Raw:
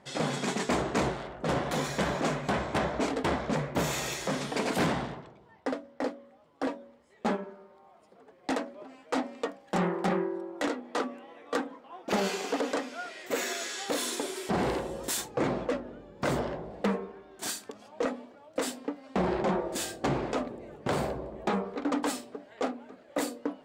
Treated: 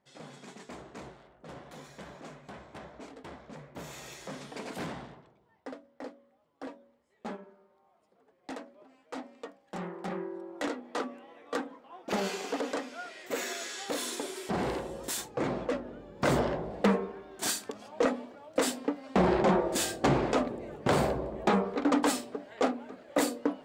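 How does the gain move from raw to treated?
3.49 s -17.5 dB
4.25 s -10.5 dB
9.93 s -10.5 dB
10.55 s -3 dB
15.42 s -3 dB
16.44 s +3.5 dB

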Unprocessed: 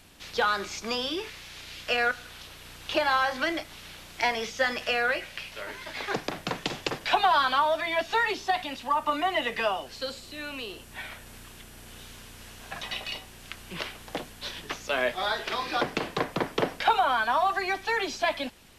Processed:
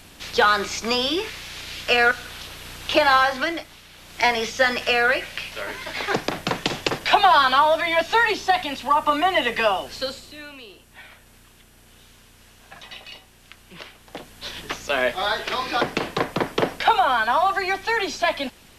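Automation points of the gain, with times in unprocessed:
3.17 s +8 dB
3.89 s -3 dB
4.25 s +7 dB
10 s +7 dB
10.6 s -5 dB
14.02 s -5 dB
14.6 s +5 dB

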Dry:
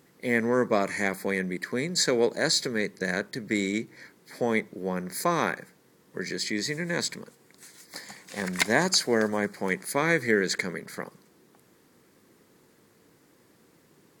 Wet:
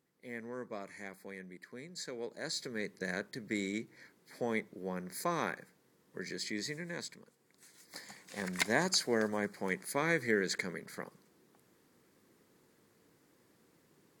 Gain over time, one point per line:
2.17 s -19 dB
2.91 s -9 dB
6.66 s -9 dB
7.18 s -16 dB
7.96 s -7.5 dB

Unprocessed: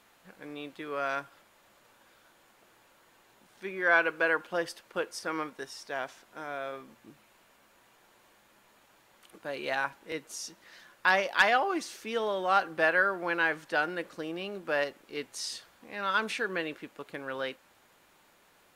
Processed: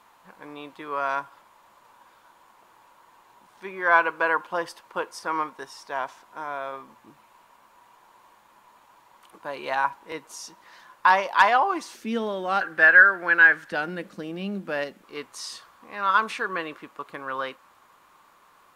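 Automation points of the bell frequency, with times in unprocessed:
bell +15 dB 0.57 oct
990 Hz
from 11.95 s 240 Hz
from 12.61 s 1600 Hz
from 13.72 s 200 Hz
from 15.02 s 1100 Hz

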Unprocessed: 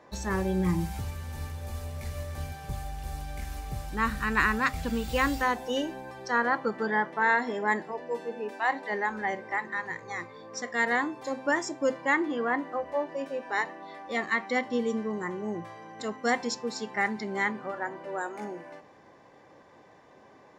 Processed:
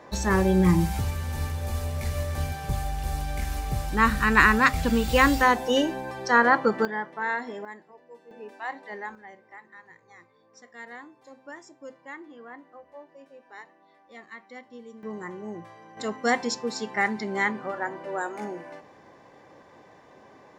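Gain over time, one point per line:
+7 dB
from 6.85 s -4.5 dB
from 7.65 s -16 dB
from 8.31 s -7 dB
from 9.15 s -16 dB
from 15.03 s -3.5 dB
from 15.97 s +3 dB

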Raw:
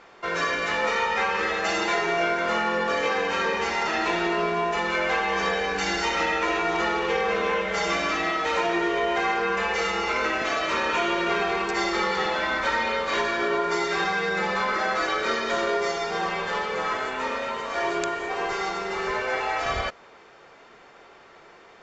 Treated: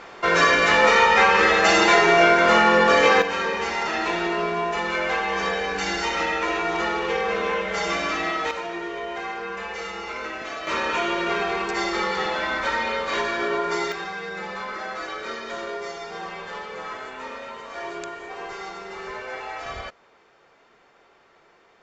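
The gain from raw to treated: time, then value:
+8.5 dB
from 3.22 s 0 dB
from 8.51 s -7 dB
from 10.67 s 0 dB
from 13.92 s -7 dB

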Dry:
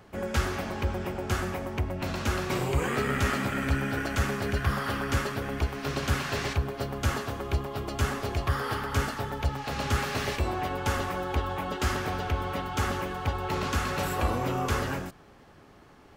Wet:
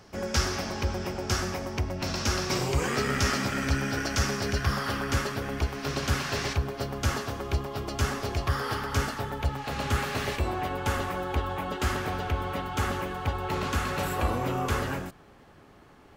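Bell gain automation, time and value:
bell 5400 Hz 0.59 oct
4.49 s +14 dB
5.04 s +5.5 dB
8.93 s +5.5 dB
9.39 s -2 dB

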